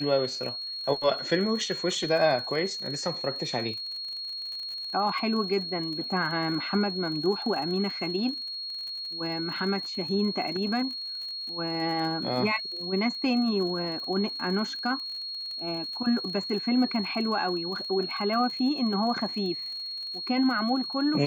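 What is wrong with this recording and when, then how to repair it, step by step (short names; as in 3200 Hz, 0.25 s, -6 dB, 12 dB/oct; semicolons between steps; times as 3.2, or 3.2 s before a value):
crackle 46/s -36 dBFS
tone 4300 Hz -33 dBFS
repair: de-click; notch 4300 Hz, Q 30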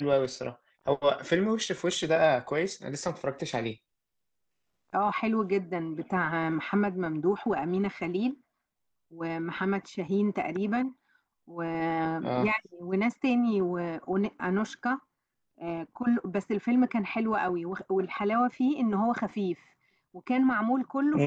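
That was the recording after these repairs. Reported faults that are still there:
none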